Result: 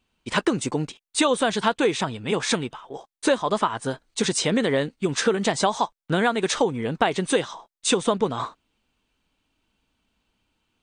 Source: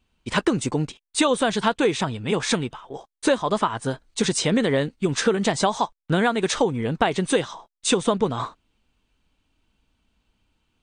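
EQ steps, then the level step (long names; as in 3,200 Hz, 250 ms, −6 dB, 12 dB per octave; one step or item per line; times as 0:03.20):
low-shelf EQ 120 Hz −9 dB
0.0 dB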